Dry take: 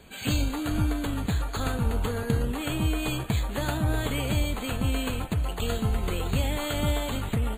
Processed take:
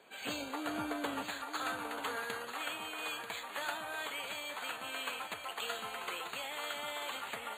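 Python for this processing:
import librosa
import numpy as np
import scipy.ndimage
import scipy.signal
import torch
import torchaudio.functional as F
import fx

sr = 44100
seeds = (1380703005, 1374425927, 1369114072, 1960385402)

y = fx.highpass(x, sr, hz=fx.steps((0.0, 520.0), (1.22, 1100.0)), slope=12)
y = fx.rider(y, sr, range_db=10, speed_s=0.5)
y = fx.high_shelf(y, sr, hz=3000.0, db=-10.0)
y = y + 10.0 ** (-9.0 / 20.0) * np.pad(y, (int(938 * sr / 1000.0), 0))[:len(y)]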